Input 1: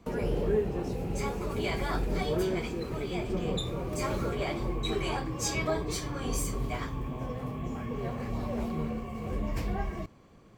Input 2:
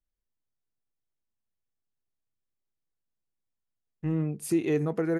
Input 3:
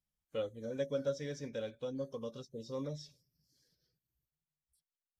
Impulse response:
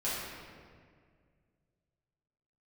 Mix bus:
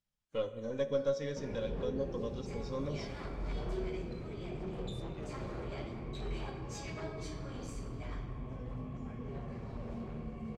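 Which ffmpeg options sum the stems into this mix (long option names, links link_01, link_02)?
-filter_complex "[0:a]lowshelf=frequency=260:gain=6,adelay=1300,volume=-9dB,asplit=2[link_01][link_02];[link_02]volume=-13.5dB[link_03];[1:a]adelay=500,volume=-13.5dB[link_04];[2:a]aeval=exprs='if(lt(val(0),0),0.708*val(0),val(0))':channel_layout=same,volume=2dB,asplit=3[link_05][link_06][link_07];[link_06]volume=-15.5dB[link_08];[link_07]apad=whole_len=523511[link_09];[link_01][link_09]sidechaincompress=threshold=-50dB:ratio=8:attack=16:release=120[link_10];[link_10][link_04]amix=inputs=2:normalize=0,aeval=exprs='0.0211*(abs(mod(val(0)/0.0211+3,4)-2)-1)':channel_layout=same,acompressor=threshold=-44dB:ratio=6,volume=0dB[link_11];[3:a]atrim=start_sample=2205[link_12];[link_03][link_08]amix=inputs=2:normalize=0[link_13];[link_13][link_12]afir=irnorm=-1:irlink=0[link_14];[link_05][link_11][link_14]amix=inputs=3:normalize=0,lowpass=6900"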